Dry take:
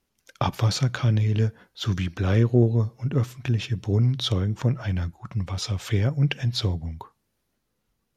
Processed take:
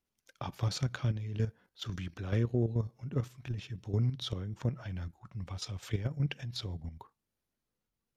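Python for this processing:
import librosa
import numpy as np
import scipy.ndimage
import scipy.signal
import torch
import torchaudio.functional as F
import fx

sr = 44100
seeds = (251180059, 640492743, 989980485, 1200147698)

y = fx.level_steps(x, sr, step_db=10)
y = F.gain(torch.from_numpy(y), -7.5).numpy()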